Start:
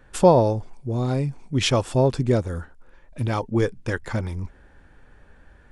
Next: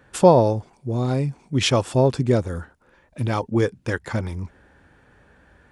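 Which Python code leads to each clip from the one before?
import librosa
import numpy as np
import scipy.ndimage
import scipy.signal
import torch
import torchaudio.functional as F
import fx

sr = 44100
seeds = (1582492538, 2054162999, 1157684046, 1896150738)

y = scipy.signal.sosfilt(scipy.signal.butter(2, 75.0, 'highpass', fs=sr, output='sos'), x)
y = y * 10.0 ** (1.5 / 20.0)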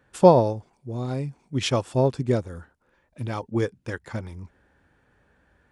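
y = fx.upward_expand(x, sr, threshold_db=-26.0, expansion=1.5)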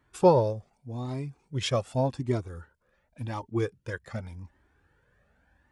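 y = fx.comb_cascade(x, sr, direction='rising', hz=0.87)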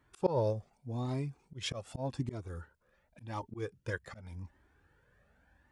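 y = fx.auto_swell(x, sr, attack_ms=223.0)
y = y * 10.0 ** (-1.5 / 20.0)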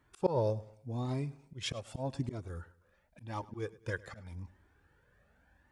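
y = fx.echo_feedback(x, sr, ms=103, feedback_pct=42, wet_db=-20.0)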